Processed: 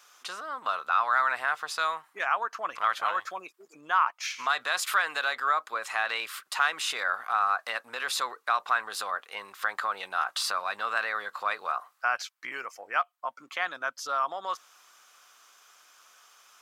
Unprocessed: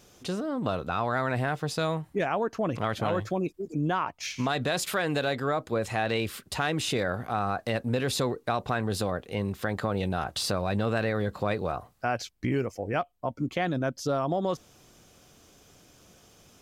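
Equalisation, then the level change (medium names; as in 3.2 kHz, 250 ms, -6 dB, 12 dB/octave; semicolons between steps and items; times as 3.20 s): resonant high-pass 1.2 kHz, resonance Q 2.7; 0.0 dB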